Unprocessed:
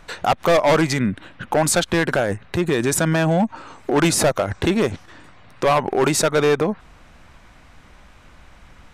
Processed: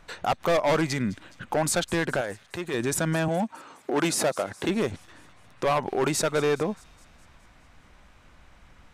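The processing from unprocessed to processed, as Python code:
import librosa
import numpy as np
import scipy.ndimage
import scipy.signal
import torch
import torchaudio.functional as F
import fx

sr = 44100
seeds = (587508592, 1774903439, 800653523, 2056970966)

y = fx.low_shelf(x, sr, hz=340.0, db=-11.5, at=(2.21, 2.74))
y = fx.highpass(y, sr, hz=190.0, slope=12, at=(3.28, 4.69))
y = fx.echo_wet_highpass(y, sr, ms=208, feedback_pct=59, hz=3500.0, wet_db=-18)
y = y * librosa.db_to_amplitude(-7.0)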